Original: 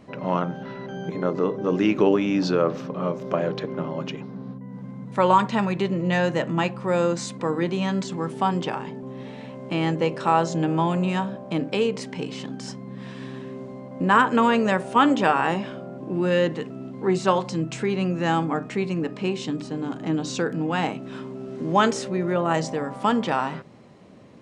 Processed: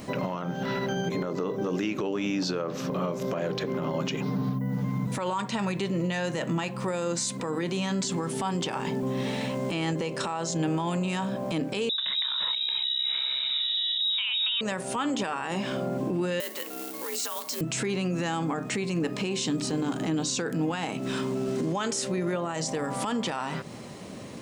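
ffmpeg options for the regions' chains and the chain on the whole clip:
-filter_complex "[0:a]asettb=1/sr,asplit=3[a][b][c];[a]atrim=end=4.254[d];[b]atrim=start=4.25:end=5.07,asetpts=PTS-STARTPTS,afade=t=in:d=0.004:c=qsin,afade=t=out:st=0.816:d=0.004:c=qsin,equalizer=f=8.3k:w=5.8:g=-11.5,aecho=1:1:6.7:0.84,atrim=end_sample=36162[e];[c]atrim=start=5.066[f];[d][e]acrossfade=d=0.004:c1=hsin:c2=qsin[g];[g][f]acrossfade=d=0.004:c1=qsin:c2=hsin,asettb=1/sr,asplit=3[h][i][j];[h]atrim=end=11.894[k];[i]atrim=start=11.89:end=14.61,asetpts=PTS-STARTPTS,afade=t=in:d=0.004:c=qsin,afade=t=out:st=2.716:d=0.004:c=qsin,acrossover=split=480[l][m];[m]adelay=90[n];[l][n]amix=inputs=2:normalize=0,atrim=end_sample=119952,lowpass=f=3.4k:t=q:w=0.5098,lowpass=f=3.4k:t=q:w=0.6013,lowpass=f=3.4k:t=q:w=0.9,lowpass=f=3.4k:t=q:w=2.563,afreqshift=-4000[o];[j]atrim=start=14.606[p];[k][o]acrossfade=d=0.004:c1=hsin:c2=qsin[q];[q][p]acrossfade=d=0.004:c1=qsin:c2=hsin,asettb=1/sr,asplit=3[r][s][t];[r]atrim=end=16.404[u];[s]atrim=start=16.4:end=17.61,asetpts=PTS-STARTPTS,afade=t=in:d=0.004:c=qsin,afade=t=out:st=1.206:d=0.004:c=qsin,highpass=f=1.1k:p=1,afreqshift=60,acrusher=bits=3:mode=log:mix=0:aa=0.000001[v];[t]atrim=start=17.606[w];[u][v]acrossfade=d=0.004:c1=hsin:c2=qsin[x];[x][w]acrossfade=d=0.004:c1=qsin:c2=hsin,aemphasis=mode=production:type=75fm,acompressor=threshold=-32dB:ratio=6,alimiter=level_in=5dB:limit=-24dB:level=0:latency=1:release=19,volume=-5dB,volume=8.5dB"

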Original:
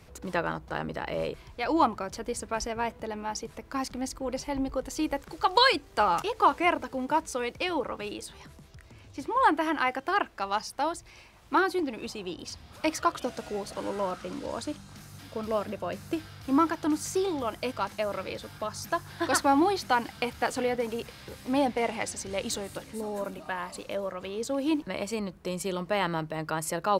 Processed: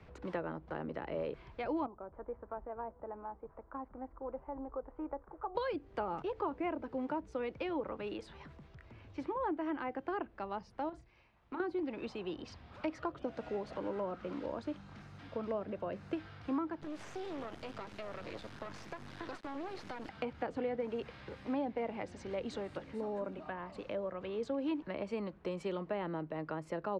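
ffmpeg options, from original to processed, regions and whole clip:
-filter_complex "[0:a]asettb=1/sr,asplit=3[a][b][c];[a]atrim=end=1.864[d];[b]atrim=start=1.86:end=5.55,asetpts=PTS-STARTPTS,afade=t=in:d=0.004:c=qsin,afade=t=out:st=3.686:d=0.004:c=qsin,lowpass=f=1.2k:w=0.5412,lowpass=f=1.2k:w=1.3066,equalizer=f=160:w=0.47:g=-14.5[e];[c]atrim=start=5.546[f];[d][e]acrossfade=d=0.004:c1=hsin:c2=qsin[g];[g][f]acrossfade=d=0.004:c1=qsin:c2=hsin,asettb=1/sr,asplit=3[h][i][j];[h]atrim=end=10.894[k];[i]atrim=start=10.89:end=11.6,asetpts=PTS-STARTPTS,afade=t=in:d=0.004:c=qsin,afade=t=out:st=0.706:d=0.004:c=qsin,agate=range=-11dB:threshold=-48dB:ratio=16:release=100:detection=peak,acompressor=threshold=-38dB:ratio=3:attack=3.2:release=140:knee=1:detection=peak,asplit=2[l][m];[m]adelay=33,volume=-8dB[n];[l][n]amix=inputs=2:normalize=0,atrim=end_sample=31311[o];[j]atrim=start=11.596[p];[k][o]acrossfade=d=0.004:c1=hsin:c2=qsin[q];[q][p]acrossfade=d=0.004:c1=qsin:c2=hsin,asettb=1/sr,asplit=3[r][s][t];[r]atrim=end=16.814[u];[s]atrim=start=16.81:end=20.09,asetpts=PTS-STARTPTS,afade=t=in:d=0.004:c=qsin,afade=t=out:st=3.276:d=0.004:c=qsin,bass=f=250:g=10,treble=f=4k:g=12,acompressor=threshold=-29dB:ratio=20:attack=3.2:release=140:knee=1:detection=peak,acrusher=bits=4:dc=4:mix=0:aa=0.000001[v];[t]atrim=start=20.086[w];[u][v]acrossfade=d=0.004:c1=hsin:c2=qsin[x];[x][w]acrossfade=d=0.004:c1=qsin:c2=hsin,lowpass=2.5k,acrossover=split=210|560[y][z][aa];[y]acompressor=threshold=-50dB:ratio=4[ab];[z]acompressor=threshold=-33dB:ratio=4[ac];[aa]acompressor=threshold=-42dB:ratio=4[ad];[ab][ac][ad]amix=inputs=3:normalize=0,volume=-2.5dB"

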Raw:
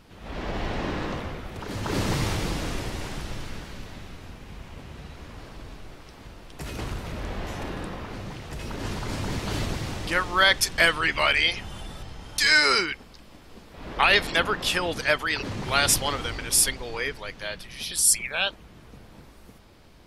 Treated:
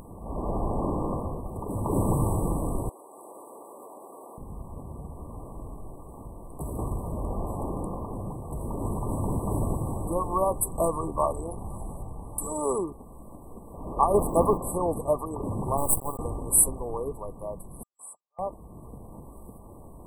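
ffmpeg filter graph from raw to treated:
-filter_complex "[0:a]asettb=1/sr,asplit=3[a][b][c];[a]atrim=end=2.894[d];[b]atrim=start=2.89:end=4.38,asetpts=PTS-STARTPTS,afade=t=in:d=0.004:c=qsin,afade=t=out:st=1.486:d=0.004:c=qsin,highpass=f=370:w=0.5412,highpass=f=370:w=1.3066,acompressor=threshold=-44dB:ratio=12:attack=3.2:release=140:knee=1:detection=peak[e];[c]atrim=start=4.376[f];[d][e]acrossfade=d=0.004:c1=hsin:c2=qsin[g];[g][f]acrossfade=d=0.004:c1=qsin:c2=hsin,asettb=1/sr,asplit=3[h][i][j];[h]atrim=end=14.144[k];[i]atrim=start=14.14:end=14.58,asetpts=PTS-STARTPTS,afade=t=in:d=0.004:c=qsin,afade=t=out:st=0.436:d=0.004:c=qsin,agate=range=-33dB:threshold=-30dB:ratio=3:release=100:detection=peak,acontrast=25,acrusher=bits=9:dc=4:mix=0:aa=0.000001[l];[j]atrim=start=14.576[m];[k][l]acrossfade=d=0.004:c1=hsin:c2=qsin[n];[n][m]acrossfade=d=0.004:c1=qsin:c2=hsin,asettb=1/sr,asplit=3[o][p][q];[o]atrim=end=15.774[r];[p]atrim=start=15.77:end=16.19,asetpts=PTS-STARTPTS,afade=t=in:d=0.004:c=qsin,afade=t=out:st=0.416:d=0.004:c=qsin,agate=range=-33dB:threshold=-23dB:ratio=3:release=100:detection=peak,acrusher=bits=3:dc=4:mix=0:aa=0.000001[s];[q]atrim=start=16.186[t];[r][s]acrossfade=d=0.004:c1=hsin:c2=qsin[u];[u][t]acrossfade=d=0.004:c1=qsin:c2=hsin,asettb=1/sr,asplit=3[v][w][x];[v]atrim=end=17.834[y];[w]atrim=start=17.83:end=18.39,asetpts=PTS-STARTPTS,afade=t=in:d=0.004:c=qsin,afade=t=out:st=0.556:d=0.004:c=qsin,agate=range=-49dB:threshold=-24dB:ratio=16:release=100:detection=peak,asuperpass=centerf=1500:order=4:qfactor=0.78[z];[x]atrim=start=18.386[aa];[y][z]acrossfade=d=0.004:c1=hsin:c2=qsin[ab];[ab][aa]acrossfade=d=0.004:c1=qsin:c2=hsin,afftfilt=real='re*(1-between(b*sr/4096,1200,7700))':imag='im*(1-between(b*sr/4096,1200,7700))':win_size=4096:overlap=0.75,acompressor=mode=upward:threshold=-40dB:ratio=2.5,volume=2dB"

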